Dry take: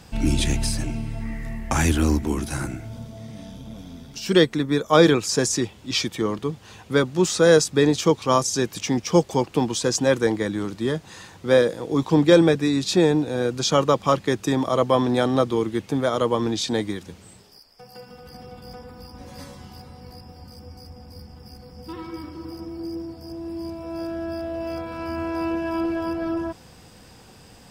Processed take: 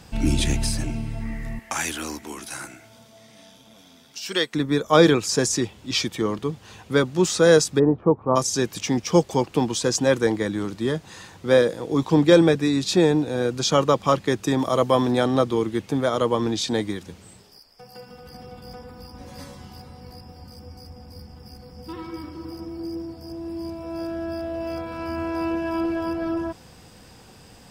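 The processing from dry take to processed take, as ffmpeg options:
-filter_complex "[0:a]asettb=1/sr,asplit=3[a][b][c];[a]atrim=end=1.594[d];[b]atrim=start=1.59:end=4.54,asetpts=PTS-STARTPTS,afade=t=in:d=0.004:c=qsin,afade=t=out:st=2.946:d=0.004:c=qsin,highpass=f=1.2k:p=1[e];[c]atrim=start=4.536[f];[d][e]acrossfade=d=0.004:c1=hsin:c2=qsin[g];[g][f]acrossfade=d=0.004:c1=qsin:c2=hsin,asplit=3[h][i][j];[h]afade=t=out:st=7.78:d=0.02[k];[i]lowpass=f=1.1k:w=0.5412,lowpass=f=1.1k:w=1.3066,afade=t=in:st=7.78:d=0.02,afade=t=out:st=8.35:d=0.02[l];[j]afade=t=in:st=8.35:d=0.02[m];[k][l][m]amix=inputs=3:normalize=0,asettb=1/sr,asplit=3[n][o][p];[n]atrim=end=14.594[q];[o]atrim=start=14.59:end=15.12,asetpts=PTS-STARTPTS,afade=t=in:d=0.004:c=qsin,afade=t=out:st=0.526:d=0.004:c=qsin,highshelf=f=8.3k:g=8[r];[p]atrim=start=15.116[s];[q][r]acrossfade=d=0.004:c1=hsin:c2=qsin[t];[t][s]acrossfade=d=0.004:c1=qsin:c2=hsin"

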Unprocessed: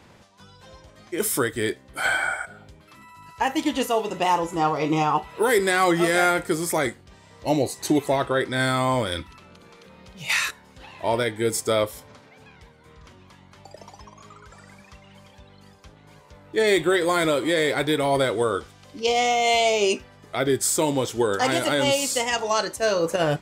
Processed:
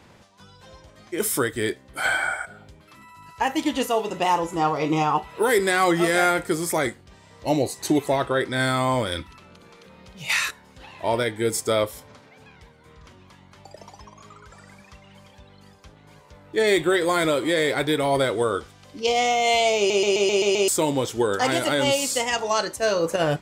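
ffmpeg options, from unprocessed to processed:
-filter_complex "[0:a]asplit=8[a][b][c][d][e][f][g][h];[a]atrim=end=19.902[i];[b]atrim=start=19.768:end=19.902[j];[c]atrim=start=19.768:end=19.902[k];[d]atrim=start=19.768:end=19.902[l];[e]atrim=start=19.768:end=19.902[m];[f]atrim=start=19.768:end=19.902[n];[g]atrim=start=19.768:end=19.902[o];[h]atrim=start=20.678[p];[i][j]acrossfade=d=0.004:c1=hsin:c2=hsin[q];[q][k]acrossfade=d=0.004:c1=hsin:c2=hsin[r];[r][l]acrossfade=d=0.004:c1=hsin:c2=hsin[s];[s][m]acrossfade=d=0.004:c1=hsin:c2=hsin[t];[t][n]acrossfade=d=0.004:c1=hsin:c2=hsin[u];[u][o]acrossfade=d=0.004:c1=hsin:c2=hsin[v];[v][p]acrossfade=d=0.004:c1=hsin:c2=hsin"

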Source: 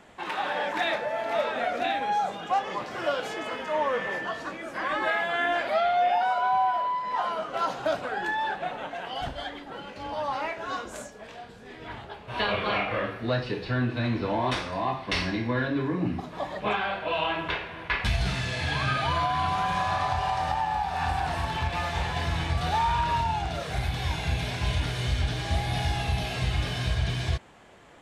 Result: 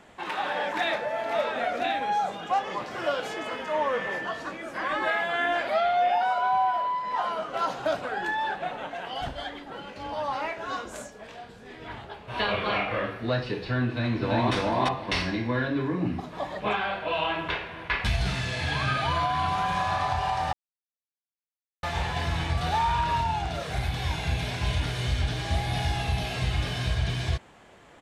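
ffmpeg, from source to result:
-filter_complex "[0:a]asplit=2[a][b];[b]afade=t=in:st=13.87:d=0.01,afade=t=out:st=14.54:d=0.01,aecho=0:1:340|680|1020:1|0.2|0.04[c];[a][c]amix=inputs=2:normalize=0,asplit=3[d][e][f];[d]atrim=end=20.53,asetpts=PTS-STARTPTS,afade=t=out:st=20.526:d=0.004:c=hsin[g];[e]atrim=start=20.53:end=21.83,asetpts=PTS-STARTPTS,volume=0[h];[f]atrim=start=21.83,asetpts=PTS-STARTPTS,afade=t=in:d=0.004:c=hsin[i];[g][h][i]concat=n=3:v=0:a=1"

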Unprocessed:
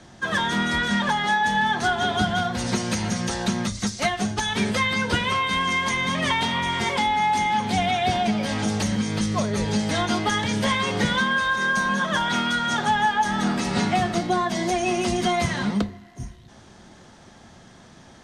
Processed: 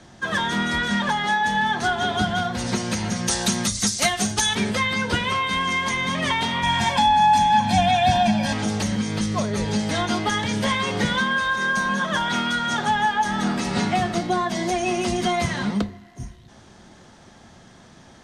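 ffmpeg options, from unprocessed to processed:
-filter_complex "[0:a]asettb=1/sr,asplit=3[a][b][c];[a]atrim=end=3.284[d];[b]atrim=start=3.28:end=4.55,asetpts=PTS-STARTPTS,afade=t=in:d=0.004:c=qsin,afade=t=out:st=1.266:d=0.004:c=qsin,aemphasis=mode=production:type=75kf[e];[c]atrim=start=4.546[f];[d][e]acrossfade=d=0.004:c1=hsin:c2=qsin[g];[g][f]acrossfade=d=0.004:c1=qsin:c2=hsin,asettb=1/sr,asplit=3[h][i][j];[h]atrim=end=6.634[k];[i]atrim=start=6.63:end=8.53,asetpts=PTS-STARTPTS,afade=t=in:d=0.004:c=qsin,afade=t=out:st=1.896:d=0.004:c=qsin,aecho=1:1:1.2:0.98,atrim=end_sample=83790[l];[j]atrim=start=8.526[m];[k][l]acrossfade=d=0.004:c1=hsin:c2=qsin[n];[n][m]acrossfade=d=0.004:c1=qsin:c2=hsin"

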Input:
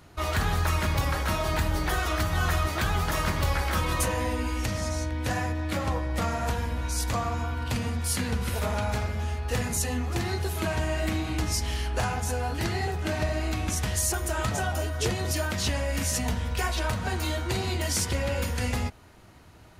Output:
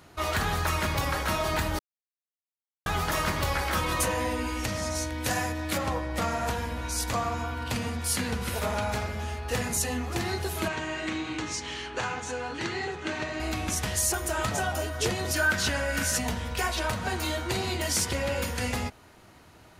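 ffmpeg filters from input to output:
-filter_complex "[0:a]asettb=1/sr,asplit=3[a][b][c];[a]atrim=end=4.954[d];[b]atrim=start=4.95:end=5.78,asetpts=PTS-STARTPTS,afade=t=in:d=0.004:c=qsin,afade=t=out:st=0.826:d=0.004:c=qsin,aemphasis=mode=production:type=cd[e];[c]atrim=start=5.776[f];[d][e]acrossfade=d=0.004:c1=hsin:c2=qsin[g];[g][f]acrossfade=d=0.004:c1=qsin:c2=hsin,asettb=1/sr,asplit=3[h][i][j];[h]atrim=end=10.684[k];[i]atrim=start=10.68:end=13.4,asetpts=PTS-STARTPTS,afade=t=in:d=0.004:c=qsin,afade=t=out:st=2.716:d=0.004:c=qsin,highpass=150,equalizer=f=200:t=q:w=4:g=-7,equalizer=f=680:t=q:w=4:g=-10,equalizer=f=5.1k:t=q:w=4:g=-7,lowpass=f=7k:w=0.5412,lowpass=f=7k:w=1.3066[l];[j]atrim=start=13.396[m];[k][l]acrossfade=d=0.004:c1=hsin:c2=qsin[n];[n][m]acrossfade=d=0.004:c1=qsin:c2=hsin,asettb=1/sr,asplit=3[o][p][q];[o]atrim=end=15.344[r];[p]atrim=start=15.34:end=16.18,asetpts=PTS-STARTPTS,afade=t=in:d=0.004:c=qsin,afade=t=out:st=0.836:d=0.004:c=qsin,equalizer=f=1.5k:t=o:w=0.23:g=14[s];[q]atrim=start=16.176[t];[r][s]acrossfade=d=0.004:c1=hsin:c2=qsin[u];[u][t]acrossfade=d=0.004:c1=qsin:c2=hsin,asplit=3[v][w][x];[v]atrim=end=1.79,asetpts=PTS-STARTPTS,afade=t=out:st=1.786:d=0.004:c=hsin[y];[w]atrim=start=1.79:end=2.86,asetpts=PTS-STARTPTS,volume=0[z];[x]atrim=start=2.86,asetpts=PTS-STARTPTS,afade=t=in:d=0.004:c=hsin[aa];[y][z][aa]concat=n=3:v=0:a=1,lowshelf=f=130:g=-8.5,acontrast=74,volume=-5.5dB"

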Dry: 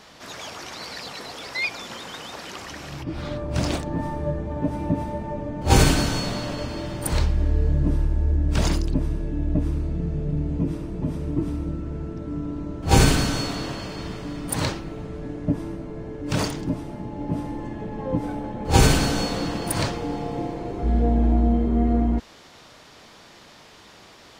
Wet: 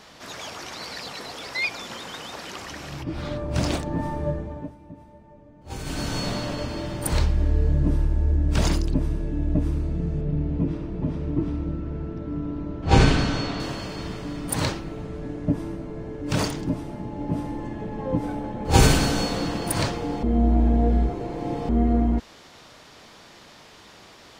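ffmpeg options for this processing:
-filter_complex "[0:a]asettb=1/sr,asplit=3[a][b][c];[a]atrim=end=10.214[d];[b]atrim=start=10.21:end=13.6,asetpts=PTS-STARTPTS,afade=t=in:d=0.004:c=qsin,afade=t=out:st=3.386:d=0.004:c=qsin,lowpass=4.2k[e];[c]atrim=start=13.596[f];[d][e]acrossfade=d=0.004:c1=hsin:c2=qsin[g];[g][f]acrossfade=d=0.004:c1=qsin:c2=hsin,asplit=5[h][i][j][k][l];[h]atrim=end=4.75,asetpts=PTS-STARTPTS,afade=t=out:st=4.29:d=0.46:silence=0.105925[m];[i]atrim=start=4.75:end=5.83,asetpts=PTS-STARTPTS,volume=-19.5dB[n];[j]atrim=start=5.83:end=20.232,asetpts=PTS-STARTPTS,afade=t=in:d=0.46:silence=0.105925[o];[k]atrim=start=20.228:end=21.692,asetpts=PTS-STARTPTS,areverse[p];[l]atrim=start=21.688[q];[m][n][o]concat=n=3:v=0:a=1[r];[r][p]acrossfade=d=0.004:c1=hsin:c2=hsin[s];[s][q]acrossfade=d=0.004:c1=hsin:c2=hsin"

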